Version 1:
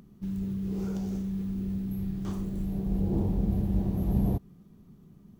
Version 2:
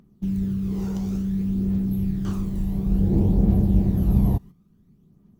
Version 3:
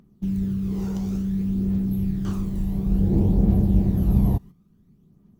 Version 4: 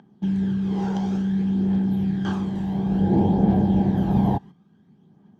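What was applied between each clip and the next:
noise gate −43 dBFS, range −11 dB; phase shifter 0.57 Hz, delay 1.1 ms, feedback 40%; level +4.5 dB
no processing that can be heard
band-pass filter 160–4,900 Hz; hollow resonant body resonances 830/1,600/3,200 Hz, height 14 dB, ringing for 25 ms; level +4 dB

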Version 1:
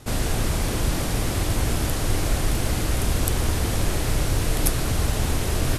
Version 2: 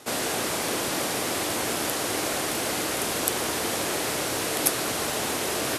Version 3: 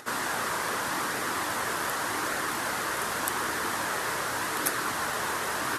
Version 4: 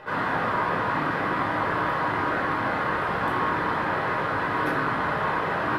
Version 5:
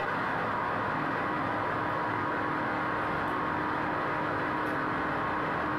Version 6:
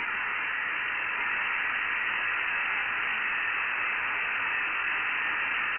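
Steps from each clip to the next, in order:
high-pass filter 340 Hz 12 dB per octave; level +2.5 dB
flanger 0.85 Hz, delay 0.4 ms, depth 1.6 ms, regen −65%; flat-topped bell 1,300 Hz +10 dB 1.3 octaves; upward compression, threshold −41 dBFS; level −2 dB
high-frequency loss of the air 430 metres; rectangular room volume 670 cubic metres, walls furnished, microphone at 5 metres
on a send: feedback echo with a low-pass in the loop 323 ms, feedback 77%, low-pass 2,000 Hz, level −7 dB; on the sum: envelope flattener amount 100%; level −8.5 dB
variable-slope delta modulation 64 kbit/s; single-tap delay 1,187 ms −4 dB; voice inversion scrambler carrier 2,900 Hz

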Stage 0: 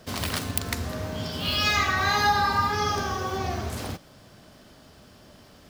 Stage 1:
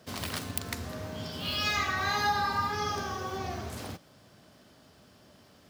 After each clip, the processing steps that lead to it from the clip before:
high-pass filter 76 Hz
level −6 dB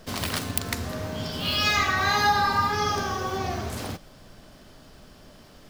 background noise brown −59 dBFS
level +6.5 dB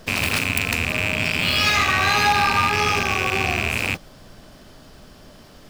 loose part that buzzes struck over −37 dBFS, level −11 dBFS
in parallel at −4.5 dB: wave folding −18 dBFS

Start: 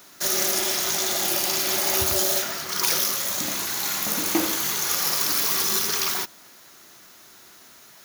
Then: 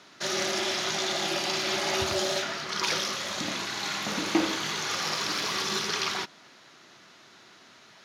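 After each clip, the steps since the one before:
Chebyshev band-pass filter 120–3,800 Hz, order 2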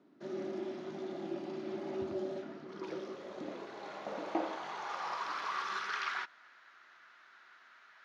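band-pass filter sweep 280 Hz → 1,500 Hz, 0:02.58–0:06.04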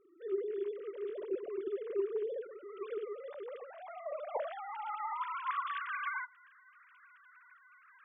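three sine waves on the formant tracks
level +1 dB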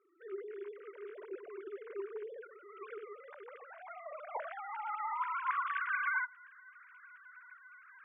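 loudspeaker in its box 440–2,900 Hz, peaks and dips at 550 Hz −6 dB, 960 Hz +5 dB, 1,500 Hz +9 dB, 2,200 Hz +6 dB
level −3 dB

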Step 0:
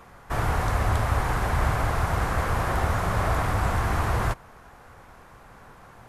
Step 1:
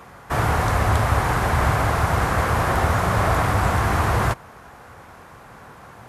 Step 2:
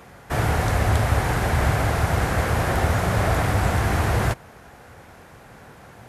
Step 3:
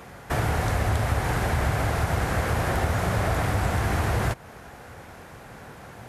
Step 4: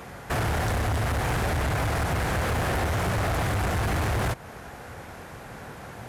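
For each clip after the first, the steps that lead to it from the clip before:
high-pass filter 66 Hz; level +6 dB
parametric band 1,100 Hz −7.5 dB 0.7 octaves
downward compressor 2 to 1, threshold −27 dBFS, peak gain reduction 7 dB; level +2 dB
hard clipping −25.5 dBFS, distortion −9 dB; level +2.5 dB

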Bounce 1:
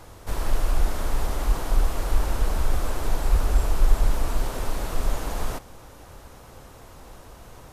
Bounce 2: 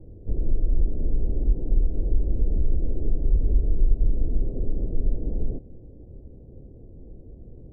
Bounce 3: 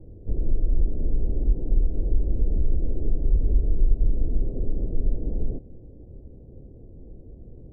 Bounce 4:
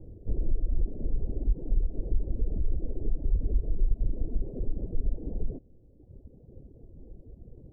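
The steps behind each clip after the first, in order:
inverse Chebyshev low-pass filter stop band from 1,100 Hz, stop band 50 dB; downward compressor 2 to 1, threshold −20 dBFS, peak gain reduction 6.5 dB; level +3.5 dB
no processing that can be heard
reverb reduction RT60 1.9 s; in parallel at −1 dB: brickwall limiter −20.5 dBFS, peak gain reduction 11.5 dB; on the sum: level −6.5 dB

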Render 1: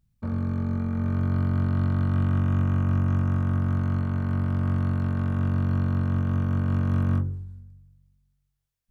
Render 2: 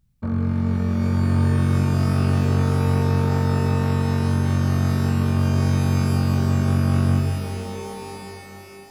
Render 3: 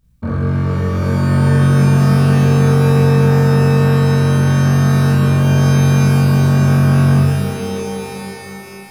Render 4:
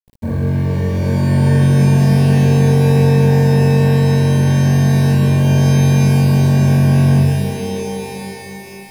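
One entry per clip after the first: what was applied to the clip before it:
reverb with rising layers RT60 3.5 s, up +12 semitones, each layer −2 dB, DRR 5.5 dB; level +4 dB
convolution reverb RT60 0.40 s, pre-delay 22 ms, DRR −3 dB; level +4.5 dB
bit reduction 8 bits; Butterworth band-reject 1,300 Hz, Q 2.4

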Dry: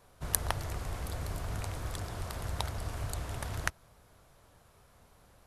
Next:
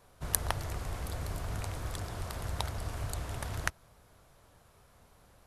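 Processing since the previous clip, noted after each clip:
no processing that can be heard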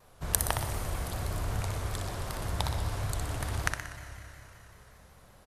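repeating echo 61 ms, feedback 51%, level −6 dB
four-comb reverb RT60 3.6 s, combs from 30 ms, DRR 9.5 dB
pitch modulation by a square or saw wave saw down 5.3 Hz, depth 100 cents
level +2 dB

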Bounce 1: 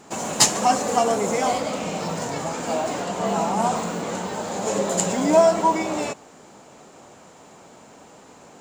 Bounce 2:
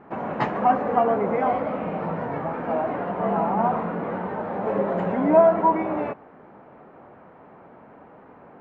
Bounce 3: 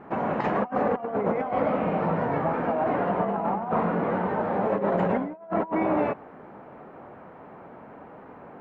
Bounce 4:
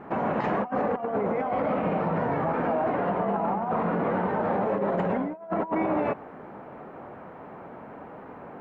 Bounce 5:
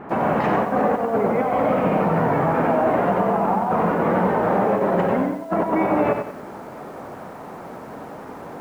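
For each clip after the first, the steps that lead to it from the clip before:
low-pass filter 1,900 Hz 24 dB per octave
compressor whose output falls as the input rises −25 dBFS, ratio −0.5
brickwall limiter −20.5 dBFS, peak gain reduction 9 dB; level +2.5 dB
feedback echo at a low word length 92 ms, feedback 35%, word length 9 bits, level −6 dB; level +6 dB

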